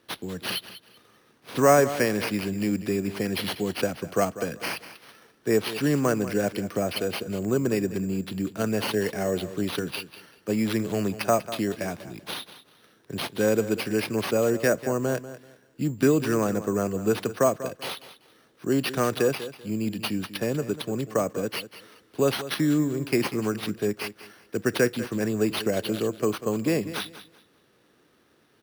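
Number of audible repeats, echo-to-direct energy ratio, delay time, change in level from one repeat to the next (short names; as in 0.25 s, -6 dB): 2, -13.5 dB, 0.193 s, -12.5 dB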